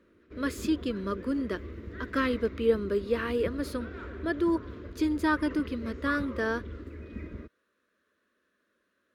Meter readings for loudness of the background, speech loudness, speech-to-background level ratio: −42.0 LKFS, −30.5 LKFS, 11.5 dB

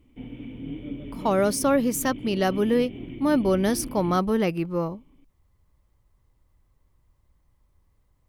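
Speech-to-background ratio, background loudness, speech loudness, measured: 13.5 dB, −37.5 LKFS, −24.0 LKFS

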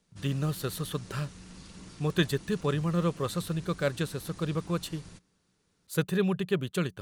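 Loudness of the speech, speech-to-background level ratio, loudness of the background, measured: −31.5 LKFS, 17.0 dB, −48.5 LKFS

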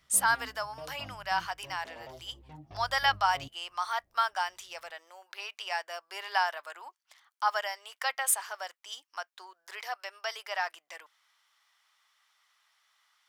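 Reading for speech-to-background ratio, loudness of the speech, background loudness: 17.5 dB, −32.5 LKFS, −50.0 LKFS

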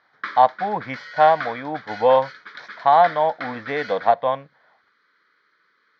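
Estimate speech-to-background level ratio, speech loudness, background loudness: 15.0 dB, −20.0 LKFS, −35.0 LKFS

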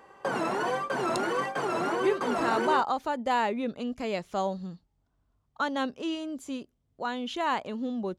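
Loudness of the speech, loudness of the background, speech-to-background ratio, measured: −31.0 LKFS, −29.5 LKFS, −1.5 dB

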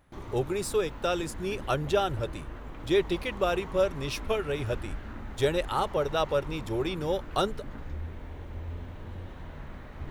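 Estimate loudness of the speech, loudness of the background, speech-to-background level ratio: −30.0 LKFS, −42.5 LKFS, 12.5 dB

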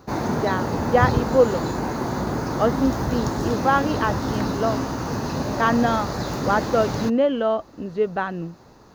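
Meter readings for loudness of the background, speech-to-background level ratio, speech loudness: −26.0 LKFS, 2.5 dB, −23.5 LKFS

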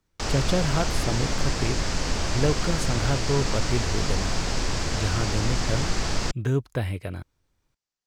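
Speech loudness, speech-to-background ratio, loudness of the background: −29.0 LKFS, −1.0 dB, −28.0 LKFS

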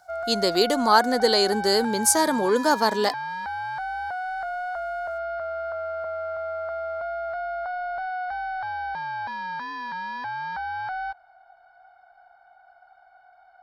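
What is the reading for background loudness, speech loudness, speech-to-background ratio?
−31.0 LKFS, −21.5 LKFS, 9.5 dB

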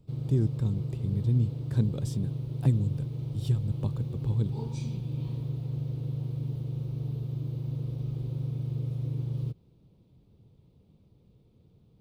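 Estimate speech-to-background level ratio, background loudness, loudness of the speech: 3.0 dB, −34.0 LKFS, −31.0 LKFS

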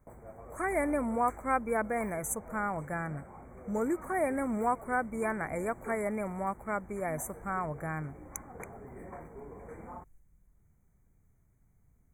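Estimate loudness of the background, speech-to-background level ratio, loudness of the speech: −49.0 LKFS, 15.5 dB, −33.5 LKFS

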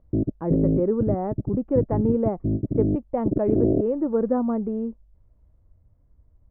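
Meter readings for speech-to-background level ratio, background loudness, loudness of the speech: 0.5 dB, −26.5 LKFS, −26.0 LKFS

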